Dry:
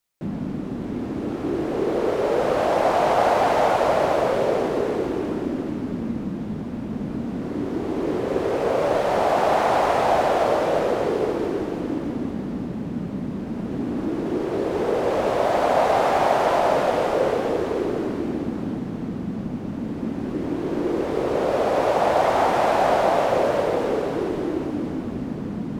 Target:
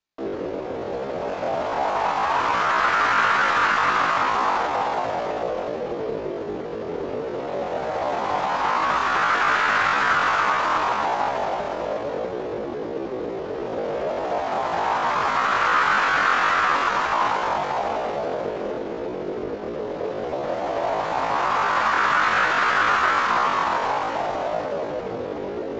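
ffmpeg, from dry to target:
ffmpeg -i in.wav -filter_complex "[0:a]acrossover=split=110|1600|3600[link_01][link_02][link_03][link_04];[link_03]asoftclip=type=tanh:threshold=-34.5dB[link_05];[link_04]acrusher=bits=6:dc=4:mix=0:aa=0.000001[link_06];[link_01][link_02][link_05][link_06]amix=inputs=4:normalize=0,asetrate=85689,aresample=44100,atempo=0.514651,aresample=16000,aresample=44100" out.wav

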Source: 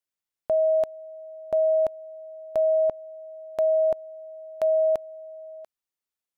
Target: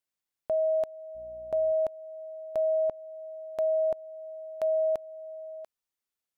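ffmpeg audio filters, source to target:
ffmpeg -i in.wav -filter_complex "[0:a]alimiter=limit=-22.5dB:level=0:latency=1:release=357,asettb=1/sr,asplit=3[link_01][link_02][link_03];[link_01]atrim=end=1.154[link_04];[link_02]atrim=start=1.15:end=1.72,asetpts=PTS-STARTPTS,afade=type=in:duration=0.004:curve=qsin,afade=type=out:start_time=0.566:duration=0.004:curve=qsin,aeval=exprs='val(0)+0.00126*(sin(2*PI*60*n/s)+sin(2*PI*2*60*n/s)/2+sin(2*PI*3*60*n/s)/3+sin(2*PI*4*60*n/s)/4+sin(2*PI*5*60*n/s)/5)':channel_layout=same[link_05];[link_03]atrim=start=1.716[link_06];[link_04][link_05]acrossfade=duration=0.004:curve1=hsin:curve2=qsin[link_07];[link_07][link_06]acrossfade=duration=0.004:curve1=qsin:curve2=hsin" out.wav

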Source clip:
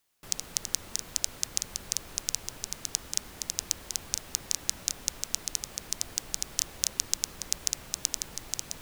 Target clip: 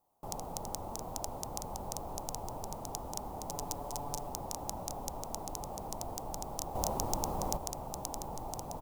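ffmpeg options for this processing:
ffmpeg -i in.wav -filter_complex "[0:a]asettb=1/sr,asplit=3[link_01][link_02][link_03];[link_01]atrim=end=3.494[link_04];[link_02]atrim=start=3.49:end=4.29,asetpts=PTS-STARTPTS,afade=type=in:duration=0.004:curve=qsin,afade=type=out:start_time=0.796:duration=0.004:curve=qsin,aecho=1:1:7:0.59,atrim=end_sample=35280[link_05];[link_03]atrim=start=4.286[link_06];[link_04][link_05]acrossfade=duration=0.004:curve1=hsin:curve2=qsin[link_07];[link_07][link_06]acrossfade=duration=0.004:curve1=qsin:curve2=hsin,asettb=1/sr,asplit=3[link_08][link_09][link_10];[link_08]atrim=end=6.754[link_11];[link_09]atrim=start=6.75:end=7.57,asetpts=PTS-STARTPTS,afade=type=in:duration=0.004:curve=qsin,afade=type=out:start_time=0.816:duration=0.004:curve=qsin,acontrast=69[link_12];[link_10]atrim=start=7.566[link_13];[link_11][link_12]acrossfade=duration=0.004:curve1=hsin:curve2=qsin[link_14];[link_14][link_13]acrossfade=duration=0.004:curve1=qsin:curve2=hsin,firequalizer=gain_entry='entry(390,0);entry(830,11);entry(1600,-22);entry(14000,-10)':delay=0.05:min_phase=1,volume=4.5dB" out.wav

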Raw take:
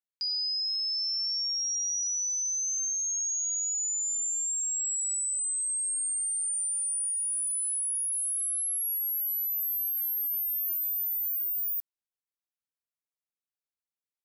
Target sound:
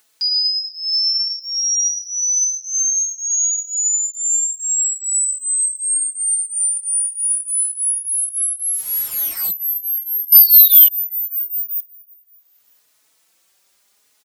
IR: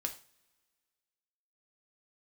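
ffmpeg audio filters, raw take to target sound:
-filter_complex "[0:a]asplit=2[link_01][link_02];[link_02]lowpass=12000[link_03];[1:a]atrim=start_sample=2205[link_04];[link_03][link_04]afir=irnorm=-1:irlink=0,volume=-5.5dB[link_05];[link_01][link_05]amix=inputs=2:normalize=0,acompressor=mode=upward:threshold=-47dB:ratio=2.5,bass=frequency=250:gain=-9,treble=frequency=4000:gain=4,aecho=1:1:334|668|1002:0.0794|0.0357|0.0161,asettb=1/sr,asplit=3[link_06][link_07][link_08];[link_06]atrim=end=8.594[link_09];[link_07]atrim=start=8.59:end=9.51,asetpts=PTS-STARTPTS,afade=type=in:duration=0.004:curve=qsin,afade=type=out:start_time=0.916:duration=0.004:curve=qsin,asplit=2[link_10][link_11];[link_11]highpass=frequency=720:poles=1,volume=35dB,asoftclip=type=tanh:threshold=-18.5dB[link_12];[link_10][link_12]amix=inputs=2:normalize=0,lowpass=frequency=7300:poles=1,volume=-6dB[link_13];[link_08]atrim=start=9.506[link_14];[link_09][link_13]acrossfade=duration=0.004:curve1=hsin:curve2=qsin[link_15];[link_15][link_14]acrossfade=duration=0.004:curve1=qsin:curve2=hsin,asettb=1/sr,asplit=3[link_16][link_17][link_18];[link_16]atrim=end=10.324[link_19];[link_17]atrim=start=10.32:end=10.88,asetpts=PTS-STARTPTS,afade=type=in:duration=0.004:curve=qsin,afade=type=out:start_time=0.556:duration=0.004:curve=qsin,aemphasis=mode=production:type=75fm[link_20];[link_18]atrim=start=10.876[link_21];[link_19][link_20]acrossfade=duration=0.004:curve1=hsin:curve2=qsin[link_22];[link_22][link_21]acrossfade=duration=0.004:curve1=qsin:curve2=hsin,acontrast=87,asplit=2[link_23][link_24];[link_24]adelay=4.2,afreqshift=0.77[link_25];[link_23][link_25]amix=inputs=2:normalize=1"

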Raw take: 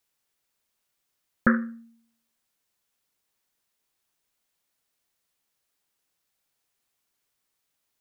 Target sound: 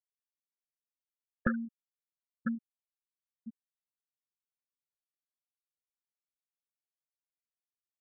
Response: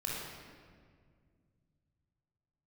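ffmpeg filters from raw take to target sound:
-filter_complex "[0:a]asplit=2[link_01][link_02];[link_02]aecho=0:1:999|1998|2997|3996:0.335|0.134|0.0536|0.0214[link_03];[link_01][link_03]amix=inputs=2:normalize=0,afftfilt=real='re*gte(hypot(re,im),0.178)':imag='im*gte(hypot(re,im),0.178)':win_size=1024:overlap=0.75,acompressor=threshold=-28dB:ratio=4"

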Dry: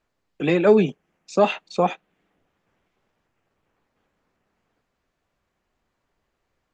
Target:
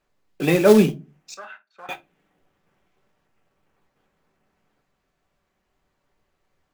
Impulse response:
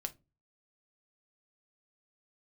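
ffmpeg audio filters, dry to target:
-filter_complex "[0:a]acrusher=bits=4:mode=log:mix=0:aa=0.000001,asettb=1/sr,asplit=3[link_01][link_02][link_03];[link_01]atrim=end=1.344[link_04];[link_02]atrim=start=1.34:end=1.89,asetpts=PTS-STARTPTS,afade=type=in:duration=0.004:curve=qsin,afade=type=out:start_time=0.546:duration=0.004:curve=qsin,bandpass=frequency=1500:width_type=q:width=11:csg=0[link_05];[link_03]atrim=start=1.886[link_06];[link_04][link_05]acrossfade=duration=0.004:curve1=hsin:curve2=qsin[link_07];[link_07][link_06]acrossfade=duration=0.004:curve1=qsin:curve2=hsin[link_08];[1:a]atrim=start_sample=2205[link_09];[link_08][link_09]afir=irnorm=-1:irlink=0,volume=3dB"

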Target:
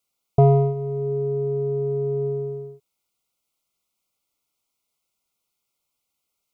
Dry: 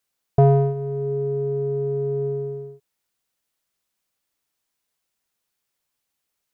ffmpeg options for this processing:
ffmpeg -i in.wav -af "asuperstop=centerf=1700:order=20:qfactor=3.1" out.wav

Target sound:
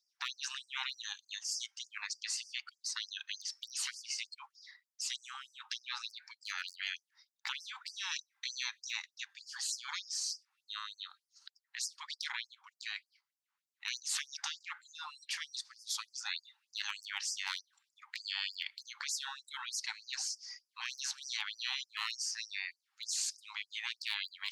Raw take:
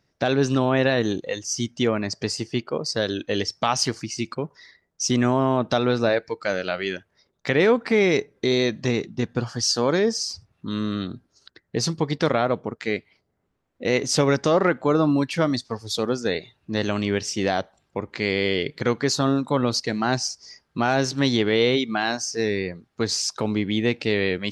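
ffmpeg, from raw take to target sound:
ffmpeg -i in.wav -af "afftfilt=real='re*lt(hypot(re,im),0.1)':imag='im*lt(hypot(re,im),0.1)':win_size=1024:overlap=0.75,asoftclip=type=hard:threshold=-19.5dB,afftfilt=real='re*gte(b*sr/1024,760*pow(4800/760,0.5+0.5*sin(2*PI*3.3*pts/sr)))':imag='im*gte(b*sr/1024,760*pow(4800/760,0.5+0.5*sin(2*PI*3.3*pts/sr)))':win_size=1024:overlap=0.75,volume=-3.5dB" out.wav

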